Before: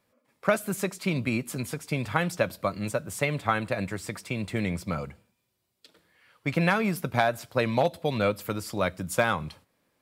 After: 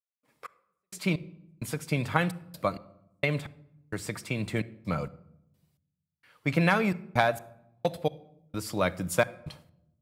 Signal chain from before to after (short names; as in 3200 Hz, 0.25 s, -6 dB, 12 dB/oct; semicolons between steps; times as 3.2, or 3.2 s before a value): step gate ".x..x..xxx" 65 bpm -60 dB; shoebox room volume 2600 m³, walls furnished, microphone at 0.49 m